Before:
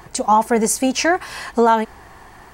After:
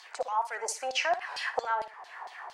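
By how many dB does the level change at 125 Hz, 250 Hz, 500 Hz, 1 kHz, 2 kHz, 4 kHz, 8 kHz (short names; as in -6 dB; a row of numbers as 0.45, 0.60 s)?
under -30 dB, -37.5 dB, -15.5 dB, -13.5 dB, -8.5 dB, -7.5 dB, -15.5 dB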